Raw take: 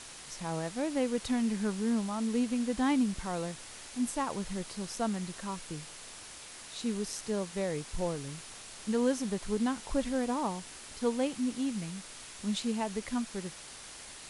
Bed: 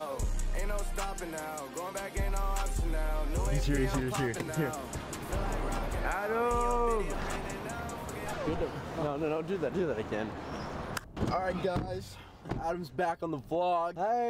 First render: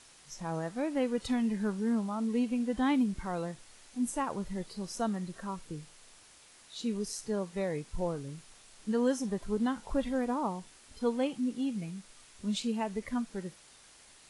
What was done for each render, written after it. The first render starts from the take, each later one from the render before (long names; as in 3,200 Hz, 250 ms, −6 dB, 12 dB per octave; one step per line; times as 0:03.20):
noise reduction from a noise print 10 dB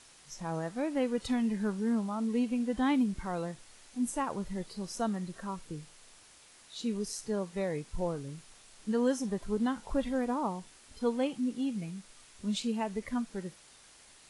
no processing that can be heard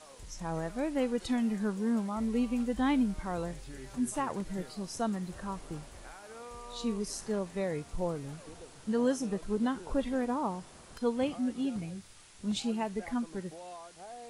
mix in bed −17 dB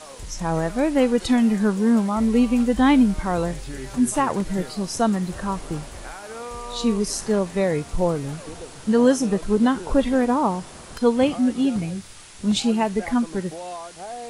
level +12 dB